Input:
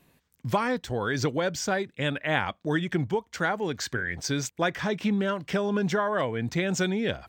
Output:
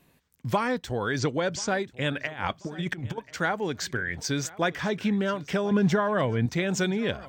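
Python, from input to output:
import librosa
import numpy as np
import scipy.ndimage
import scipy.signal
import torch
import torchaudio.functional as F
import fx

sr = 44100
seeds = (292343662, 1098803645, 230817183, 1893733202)

y = fx.steep_lowpass(x, sr, hz=9000.0, slope=36, at=(1.19, 1.69))
y = fx.over_compress(y, sr, threshold_db=-31.0, ratio=-0.5, at=(2.19, 3.18))
y = fx.low_shelf(y, sr, hz=180.0, db=11.0, at=(5.71, 6.46))
y = fx.echo_feedback(y, sr, ms=1036, feedback_pct=26, wet_db=-21.0)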